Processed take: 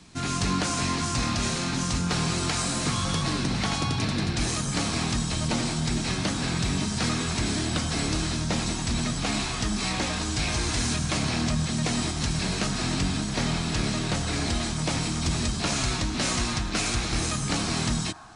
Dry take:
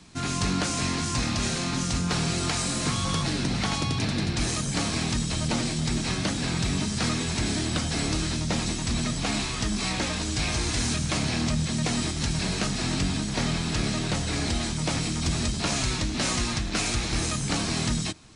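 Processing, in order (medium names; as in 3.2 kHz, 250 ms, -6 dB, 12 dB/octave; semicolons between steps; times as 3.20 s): on a send: elliptic band-pass 710–1600 Hz + reverberation RT60 1.3 s, pre-delay 82 ms, DRR 8 dB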